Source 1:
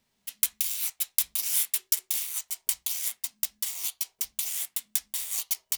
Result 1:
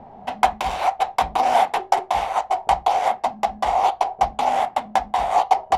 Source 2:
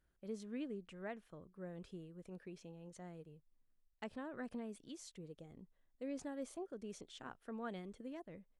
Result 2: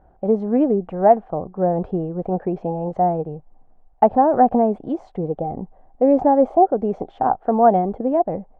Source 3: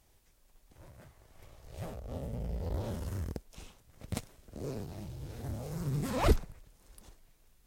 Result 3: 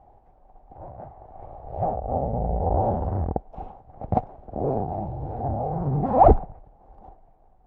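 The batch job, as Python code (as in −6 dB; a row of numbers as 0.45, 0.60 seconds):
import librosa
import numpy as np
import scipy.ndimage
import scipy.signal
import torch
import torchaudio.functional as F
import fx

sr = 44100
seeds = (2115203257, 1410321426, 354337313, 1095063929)

p1 = fx.lowpass_res(x, sr, hz=770.0, q=8.5)
p2 = fx.rider(p1, sr, range_db=5, speed_s=2.0)
p3 = p1 + (p2 * 10.0 ** (-0.5 / 20.0))
y = p3 * 10.0 ** (-2 / 20.0) / np.max(np.abs(p3))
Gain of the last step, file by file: +23.5, +18.5, +2.5 decibels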